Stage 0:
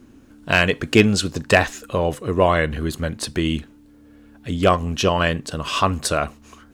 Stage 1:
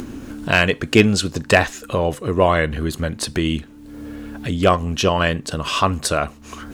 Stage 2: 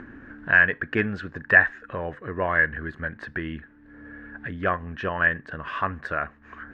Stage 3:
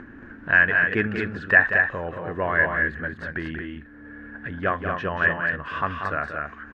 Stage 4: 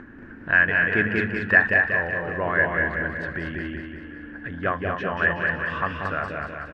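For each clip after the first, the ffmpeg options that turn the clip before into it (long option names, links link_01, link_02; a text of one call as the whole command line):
ffmpeg -i in.wav -af "acompressor=mode=upward:threshold=-20dB:ratio=2.5,volume=1dB" out.wav
ffmpeg -i in.wav -af "lowpass=frequency=1700:width_type=q:width=9.1,volume=-12.5dB" out.wav
ffmpeg -i in.wav -af "aecho=1:1:186.6|227.4:0.398|0.562" out.wav
ffmpeg -i in.wav -af "aecho=1:1:187|374|561|748|935|1122|1309:0.562|0.309|0.17|0.0936|0.0515|0.0283|0.0156,volume=-1dB" out.wav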